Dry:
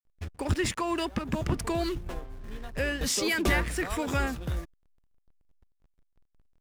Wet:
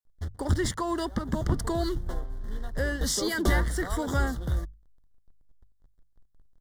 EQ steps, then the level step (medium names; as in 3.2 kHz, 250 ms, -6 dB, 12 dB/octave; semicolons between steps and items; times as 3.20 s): Butterworth band-stop 2.5 kHz, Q 2; bass shelf 84 Hz +8.5 dB; hum notches 50/100/150 Hz; 0.0 dB